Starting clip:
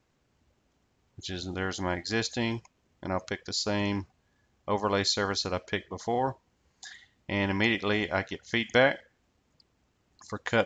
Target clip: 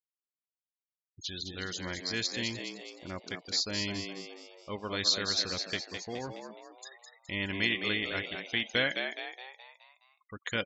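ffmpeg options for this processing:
-filter_complex "[0:a]afftfilt=real='re*gte(hypot(re,im),0.0141)':imag='im*gte(hypot(re,im),0.0141)':win_size=1024:overlap=0.75,acrossover=split=5400[a][b];[b]acompressor=threshold=-54dB:ratio=4:attack=1:release=60[c];[a][c]amix=inputs=2:normalize=0,equalizer=f=820:t=o:w=0.97:g=-10.5,crystalizer=i=5.5:c=0,asplit=2[d][e];[e]asplit=6[f][g][h][i][j][k];[f]adelay=210,afreqshift=87,volume=-6.5dB[l];[g]adelay=420,afreqshift=174,volume=-12.9dB[m];[h]adelay=630,afreqshift=261,volume=-19.3dB[n];[i]adelay=840,afreqshift=348,volume=-25.6dB[o];[j]adelay=1050,afreqshift=435,volume=-32dB[p];[k]adelay=1260,afreqshift=522,volume=-38.4dB[q];[l][m][n][o][p][q]amix=inputs=6:normalize=0[r];[d][r]amix=inputs=2:normalize=0,volume=-7.5dB"

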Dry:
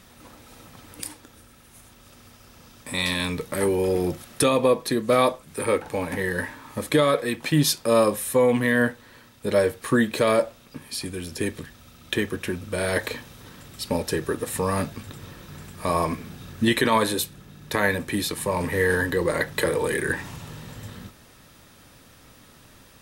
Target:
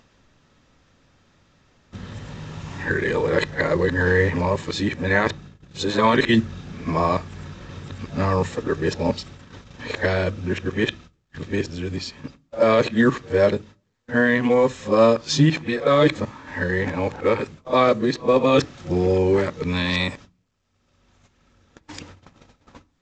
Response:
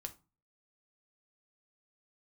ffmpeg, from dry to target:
-filter_complex "[0:a]areverse,agate=range=-43dB:threshold=-43dB:ratio=16:detection=peak,asplit=2[a][b];[1:a]atrim=start_sample=2205,lowpass=3.9k,lowshelf=f=190:g=6[c];[b][c]afir=irnorm=-1:irlink=0,volume=-4dB[d];[a][d]amix=inputs=2:normalize=0,acompressor=mode=upward:threshold=-33dB:ratio=2.5" -ar 16000 -c:a pcm_mulaw

